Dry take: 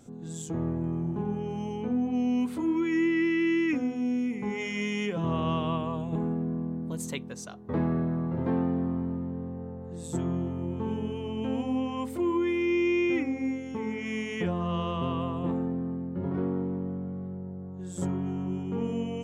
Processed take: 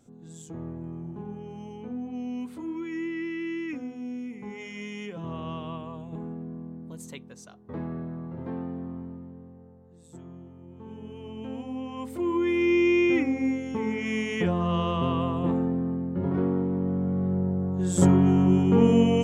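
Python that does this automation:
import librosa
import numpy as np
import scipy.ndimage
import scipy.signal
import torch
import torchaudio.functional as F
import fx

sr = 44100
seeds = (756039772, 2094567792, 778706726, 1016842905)

y = fx.gain(x, sr, db=fx.line((9.0, -7.0), (9.95, -15.0), (10.65, -15.0), (11.25, -6.0), (11.75, -6.0), (12.63, 4.0), (16.69, 4.0), (17.39, 12.0)))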